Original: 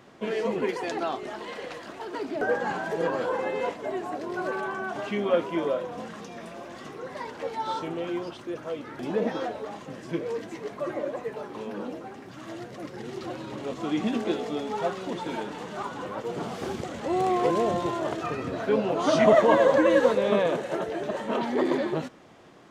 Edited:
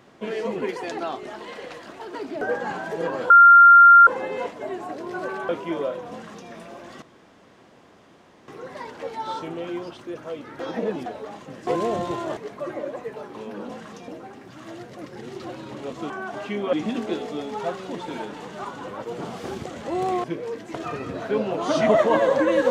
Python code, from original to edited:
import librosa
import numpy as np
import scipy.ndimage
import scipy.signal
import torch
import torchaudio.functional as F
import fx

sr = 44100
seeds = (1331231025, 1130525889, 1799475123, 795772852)

y = fx.edit(x, sr, fx.insert_tone(at_s=3.3, length_s=0.77, hz=1390.0, db=-6.5),
    fx.move(start_s=4.72, length_s=0.63, to_s=13.91),
    fx.duplicate(start_s=5.97, length_s=0.39, to_s=11.89),
    fx.insert_room_tone(at_s=6.88, length_s=1.46),
    fx.reverse_span(start_s=9.0, length_s=0.46),
    fx.swap(start_s=10.07, length_s=0.5, other_s=17.42, other_length_s=0.7), tone=tone)